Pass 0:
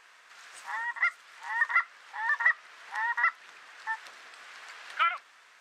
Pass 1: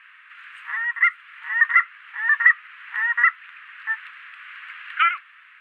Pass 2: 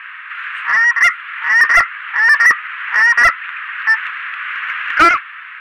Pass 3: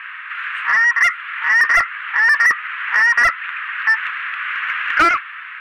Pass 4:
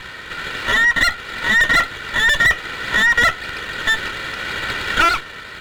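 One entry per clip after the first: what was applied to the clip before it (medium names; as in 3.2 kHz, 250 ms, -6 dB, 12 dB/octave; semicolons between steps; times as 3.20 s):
FFT filter 140 Hz 0 dB, 200 Hz -4 dB, 350 Hz -21 dB, 720 Hz -20 dB, 1.2 kHz +6 dB, 1.8 kHz +10 dB, 2.8 kHz +9 dB, 5.6 kHz -25 dB, 10 kHz -12 dB
overdrive pedal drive 23 dB, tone 1.1 kHz, clips at -3 dBFS; trim +6 dB
compression 2.5:1, threshold -12 dBFS, peak gain reduction 4.5 dB
comb filter that takes the minimum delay 2.1 ms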